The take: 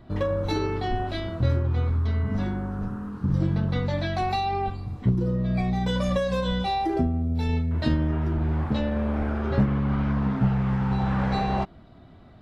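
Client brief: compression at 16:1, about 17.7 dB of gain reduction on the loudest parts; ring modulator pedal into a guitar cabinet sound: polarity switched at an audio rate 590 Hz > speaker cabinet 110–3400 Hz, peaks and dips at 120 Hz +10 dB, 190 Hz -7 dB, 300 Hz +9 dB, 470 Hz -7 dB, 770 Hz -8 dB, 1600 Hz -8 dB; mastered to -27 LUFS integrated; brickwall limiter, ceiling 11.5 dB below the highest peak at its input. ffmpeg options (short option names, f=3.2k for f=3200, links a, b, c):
-af "acompressor=threshold=-35dB:ratio=16,alimiter=level_in=13dB:limit=-24dB:level=0:latency=1,volume=-13dB,aeval=exprs='val(0)*sgn(sin(2*PI*590*n/s))':c=same,highpass=110,equalizer=f=120:t=q:w=4:g=10,equalizer=f=190:t=q:w=4:g=-7,equalizer=f=300:t=q:w=4:g=9,equalizer=f=470:t=q:w=4:g=-7,equalizer=f=770:t=q:w=4:g=-8,equalizer=f=1.6k:t=q:w=4:g=-8,lowpass=f=3.4k:w=0.5412,lowpass=f=3.4k:w=1.3066,volume=20dB"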